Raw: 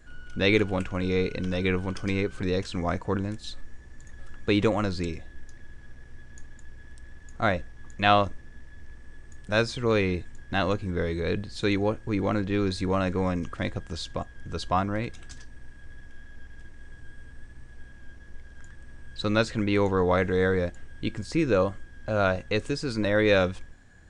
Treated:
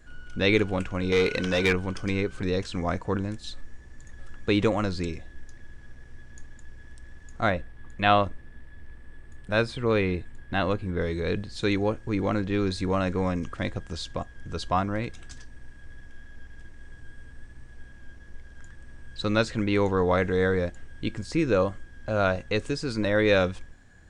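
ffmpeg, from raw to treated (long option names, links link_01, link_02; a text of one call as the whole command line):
ffmpeg -i in.wav -filter_complex "[0:a]asettb=1/sr,asplit=3[link_01][link_02][link_03];[link_01]atrim=end=1.124[link_04];[link_02]atrim=start=1.12:end=1.73,asetpts=PTS-STARTPTS,afade=type=in:duration=0.004:curve=qsin,afade=type=out:start_time=0.606:duration=0.004:curve=qsin,asplit=2[link_05][link_06];[link_06]highpass=frequency=720:poles=1,volume=17dB,asoftclip=type=tanh:threshold=-12.5dB[link_07];[link_05][link_07]amix=inputs=2:normalize=0,lowpass=frequency=5700:poles=1,volume=-6dB[link_08];[link_03]atrim=start=1.726[link_09];[link_04][link_08]acrossfade=duration=0.004:curve1=hsin:curve2=qsin[link_10];[link_10][link_09]acrossfade=duration=0.004:curve1=qsin:curve2=hsin,asettb=1/sr,asplit=3[link_11][link_12][link_13];[link_11]atrim=end=7.504[link_14];[link_12]atrim=start=7.5:end=11.01,asetpts=PTS-STARTPTS,afade=type=in:duration=0.004:curve=qsin,afade=type=out:start_time=3.506:duration=0.004:curve=qsin,equalizer=frequency=6200:width_type=o:width=0.76:gain=-10[link_15];[link_13]atrim=start=11.006[link_16];[link_14][link_15]acrossfade=duration=0.004:curve1=hsin:curve2=qsin[link_17];[link_17][link_16]acrossfade=duration=0.004:curve1=qsin:curve2=hsin" out.wav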